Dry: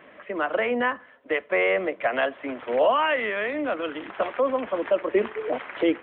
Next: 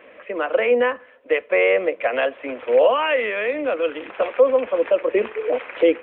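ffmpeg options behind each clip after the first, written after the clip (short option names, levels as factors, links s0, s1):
-af "equalizer=f=160:t=o:w=0.33:g=-12,equalizer=f=500:t=o:w=0.33:g=11,equalizer=f=2500:t=o:w=0.33:g=8"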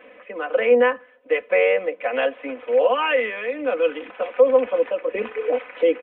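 -af "aecho=1:1:4:0.69,tremolo=f=1.3:d=0.42,volume=0.794"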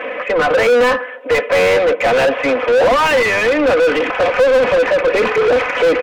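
-filter_complex "[0:a]asplit=2[s0][s1];[s1]highpass=f=720:p=1,volume=50.1,asoftclip=type=tanh:threshold=0.562[s2];[s0][s2]amix=inputs=2:normalize=0,lowpass=f=1700:p=1,volume=0.501"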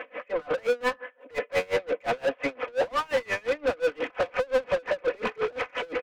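-af "aeval=exprs='val(0)*pow(10,-29*(0.5-0.5*cos(2*PI*5.7*n/s))/20)':c=same,volume=0.355"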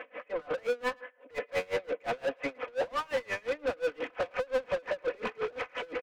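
-filter_complex "[0:a]asplit=2[s0][s1];[s1]adelay=110,highpass=300,lowpass=3400,asoftclip=type=hard:threshold=0.0596,volume=0.0398[s2];[s0][s2]amix=inputs=2:normalize=0,volume=0.531"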